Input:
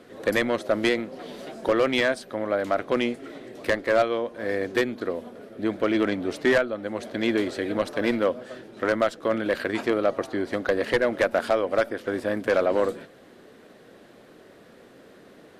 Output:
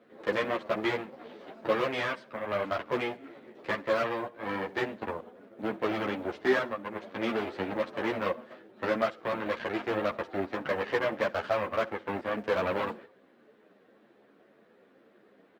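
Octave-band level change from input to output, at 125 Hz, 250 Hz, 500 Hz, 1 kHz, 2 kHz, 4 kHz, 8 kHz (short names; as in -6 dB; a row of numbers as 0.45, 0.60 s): -4.5 dB, -8.0 dB, -7.0 dB, -2.5 dB, -5.5 dB, -7.0 dB, under -10 dB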